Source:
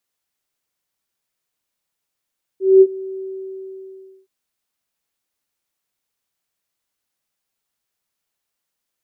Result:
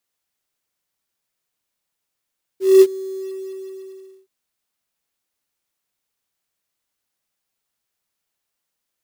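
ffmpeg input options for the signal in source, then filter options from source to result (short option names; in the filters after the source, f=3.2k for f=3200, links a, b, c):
-f lavfi -i "aevalsrc='0.668*sin(2*PI*382*t)':d=1.67:s=44100,afade=t=in:d=0.212,afade=t=out:st=0.212:d=0.052:silence=0.0794,afade=t=out:st=0.6:d=1.07"
-af "acrusher=bits=5:mode=log:mix=0:aa=0.000001"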